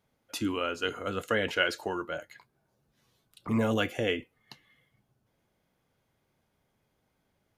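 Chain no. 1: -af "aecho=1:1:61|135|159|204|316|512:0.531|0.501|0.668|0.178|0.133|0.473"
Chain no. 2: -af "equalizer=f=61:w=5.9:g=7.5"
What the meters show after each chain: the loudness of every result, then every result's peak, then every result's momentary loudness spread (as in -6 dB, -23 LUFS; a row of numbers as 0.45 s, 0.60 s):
-28.0 LUFS, -31.0 LUFS; -10.5 dBFS, -11.5 dBFS; 16 LU, 10 LU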